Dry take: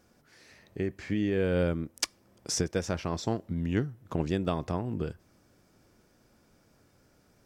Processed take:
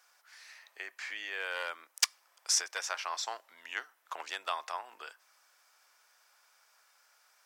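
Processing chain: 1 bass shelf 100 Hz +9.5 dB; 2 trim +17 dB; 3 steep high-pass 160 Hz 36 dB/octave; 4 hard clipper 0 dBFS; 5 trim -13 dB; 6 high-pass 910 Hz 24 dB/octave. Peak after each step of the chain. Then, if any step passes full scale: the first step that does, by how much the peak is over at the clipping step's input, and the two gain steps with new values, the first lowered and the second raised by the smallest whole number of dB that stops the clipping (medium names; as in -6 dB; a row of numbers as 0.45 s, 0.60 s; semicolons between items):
-9.0 dBFS, +8.0 dBFS, +8.0 dBFS, 0.0 dBFS, -13.0 dBFS, -10.0 dBFS; step 2, 8.0 dB; step 2 +9 dB, step 5 -5 dB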